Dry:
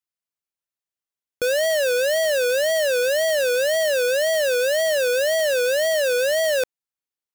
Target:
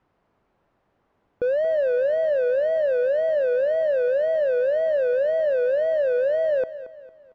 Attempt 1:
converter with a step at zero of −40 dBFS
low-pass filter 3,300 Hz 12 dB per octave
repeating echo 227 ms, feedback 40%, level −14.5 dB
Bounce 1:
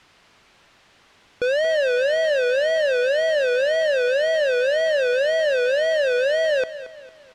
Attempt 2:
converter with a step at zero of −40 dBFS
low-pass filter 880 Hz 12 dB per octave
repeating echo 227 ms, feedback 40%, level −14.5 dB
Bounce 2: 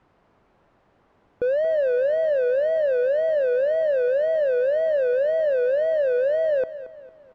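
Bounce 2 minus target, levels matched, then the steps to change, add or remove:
converter with a step at zero: distortion +7 dB
change: converter with a step at zero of −47.5 dBFS

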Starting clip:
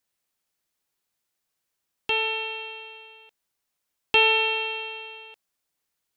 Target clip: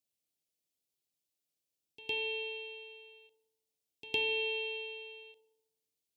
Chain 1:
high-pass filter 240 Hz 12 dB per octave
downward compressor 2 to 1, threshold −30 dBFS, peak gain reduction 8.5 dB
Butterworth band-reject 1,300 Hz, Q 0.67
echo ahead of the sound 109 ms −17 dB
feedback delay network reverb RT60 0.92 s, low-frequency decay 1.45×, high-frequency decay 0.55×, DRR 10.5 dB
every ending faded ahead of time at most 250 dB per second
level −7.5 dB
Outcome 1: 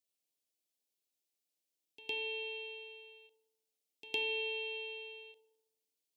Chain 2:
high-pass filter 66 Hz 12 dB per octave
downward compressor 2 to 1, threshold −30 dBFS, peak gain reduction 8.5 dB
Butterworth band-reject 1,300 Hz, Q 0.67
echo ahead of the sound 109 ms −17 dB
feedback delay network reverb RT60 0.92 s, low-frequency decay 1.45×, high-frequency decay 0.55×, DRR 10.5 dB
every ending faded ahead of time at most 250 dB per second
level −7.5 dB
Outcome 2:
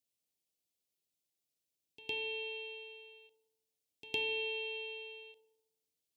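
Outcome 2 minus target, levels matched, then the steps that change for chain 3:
downward compressor: peak gain reduction +3 dB
change: downward compressor 2 to 1, threshold −23.5 dBFS, peak gain reduction 5 dB

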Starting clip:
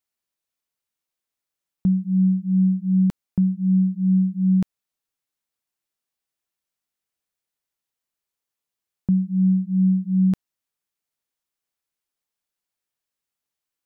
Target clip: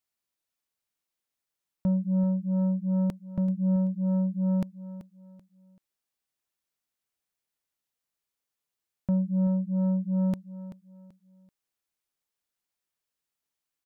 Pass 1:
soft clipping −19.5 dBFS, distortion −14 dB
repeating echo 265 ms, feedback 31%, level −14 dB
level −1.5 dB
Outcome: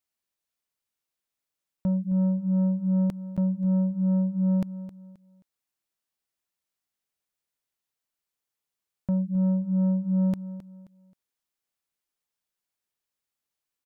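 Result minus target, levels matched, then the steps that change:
echo 119 ms early
change: repeating echo 384 ms, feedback 31%, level −14 dB

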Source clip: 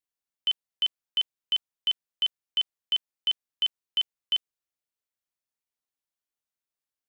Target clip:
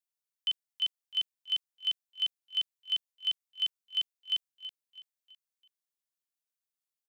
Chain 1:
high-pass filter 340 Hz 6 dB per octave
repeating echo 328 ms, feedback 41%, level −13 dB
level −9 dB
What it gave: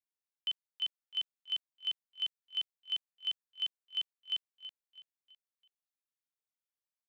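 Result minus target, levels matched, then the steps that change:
8,000 Hz band −3.0 dB
add after high-pass filter: high-shelf EQ 3,100 Hz +9 dB

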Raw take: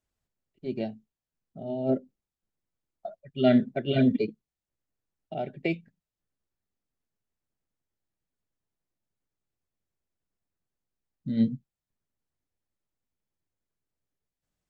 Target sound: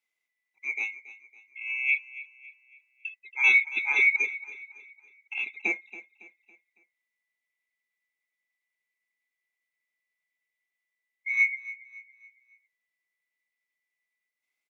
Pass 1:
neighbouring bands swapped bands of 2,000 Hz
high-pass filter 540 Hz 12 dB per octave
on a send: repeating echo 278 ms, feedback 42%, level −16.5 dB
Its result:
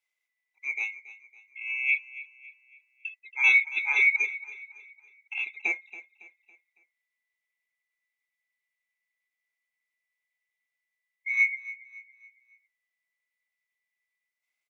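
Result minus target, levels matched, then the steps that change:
250 Hz band −8.0 dB
change: high-pass filter 250 Hz 12 dB per octave

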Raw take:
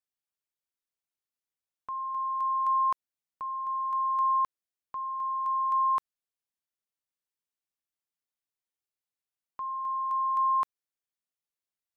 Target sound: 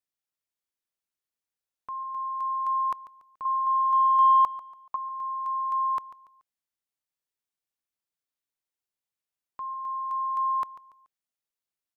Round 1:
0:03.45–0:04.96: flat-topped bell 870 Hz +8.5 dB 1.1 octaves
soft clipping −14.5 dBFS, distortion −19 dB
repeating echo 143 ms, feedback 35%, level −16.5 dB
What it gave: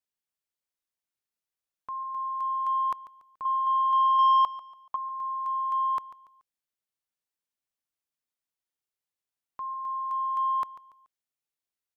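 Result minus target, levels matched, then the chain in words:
soft clipping: distortion +17 dB
0:03.45–0:04.96: flat-topped bell 870 Hz +8.5 dB 1.1 octaves
soft clipping −5 dBFS, distortion −36 dB
repeating echo 143 ms, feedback 35%, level −16.5 dB

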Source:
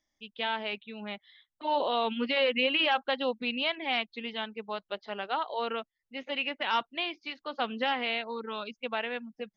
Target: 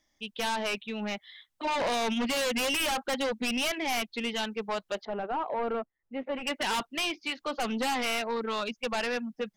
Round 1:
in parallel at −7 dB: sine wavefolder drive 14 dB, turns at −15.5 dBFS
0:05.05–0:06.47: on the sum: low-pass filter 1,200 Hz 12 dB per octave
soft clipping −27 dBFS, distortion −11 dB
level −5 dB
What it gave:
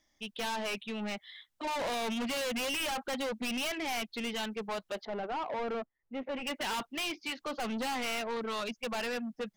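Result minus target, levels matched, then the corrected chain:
soft clipping: distortion +12 dB
in parallel at −7 dB: sine wavefolder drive 14 dB, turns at −15.5 dBFS
0:05.05–0:06.47: on the sum: low-pass filter 1,200 Hz 12 dB per octave
soft clipping −17.5 dBFS, distortion −23 dB
level −5 dB

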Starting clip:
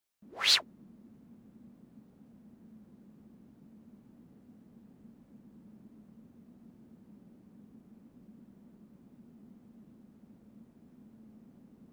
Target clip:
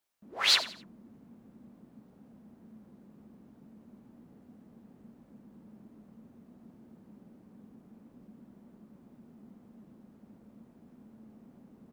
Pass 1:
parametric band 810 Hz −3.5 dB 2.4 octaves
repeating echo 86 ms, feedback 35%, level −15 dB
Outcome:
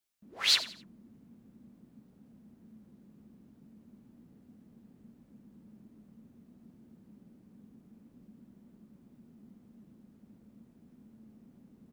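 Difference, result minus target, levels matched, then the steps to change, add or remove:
1,000 Hz band −6.5 dB
change: parametric band 810 Hz +5 dB 2.4 octaves

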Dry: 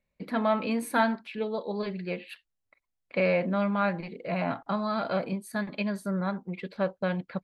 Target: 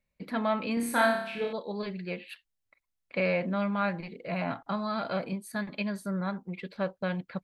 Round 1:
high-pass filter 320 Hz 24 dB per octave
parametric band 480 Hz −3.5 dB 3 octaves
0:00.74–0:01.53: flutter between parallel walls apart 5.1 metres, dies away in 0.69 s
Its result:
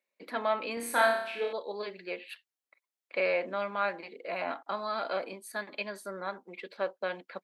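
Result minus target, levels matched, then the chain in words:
250 Hz band −11.5 dB
parametric band 480 Hz −3.5 dB 3 octaves
0:00.74–0:01.53: flutter between parallel walls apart 5.1 metres, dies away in 0.69 s

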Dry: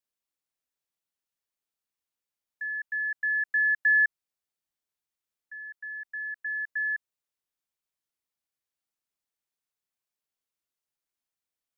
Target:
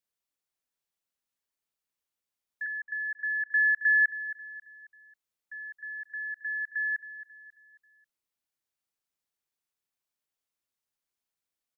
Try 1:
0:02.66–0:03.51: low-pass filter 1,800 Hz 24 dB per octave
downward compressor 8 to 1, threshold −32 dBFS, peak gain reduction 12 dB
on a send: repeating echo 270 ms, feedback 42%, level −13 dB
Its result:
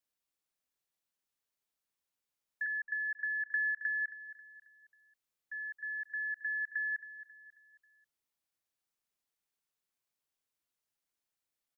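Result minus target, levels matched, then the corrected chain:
downward compressor: peak gain reduction +12 dB
0:02.66–0:03.51: low-pass filter 1,800 Hz 24 dB per octave
on a send: repeating echo 270 ms, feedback 42%, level −13 dB

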